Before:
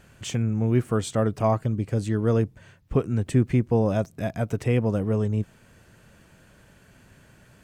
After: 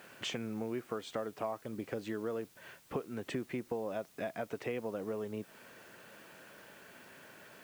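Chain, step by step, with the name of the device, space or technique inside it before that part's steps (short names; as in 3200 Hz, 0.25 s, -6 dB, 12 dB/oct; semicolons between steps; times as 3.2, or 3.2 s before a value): baby monitor (BPF 350–3900 Hz; compressor 6:1, threshold -39 dBFS, peak gain reduction 18.5 dB; white noise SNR 23 dB); gain +3.5 dB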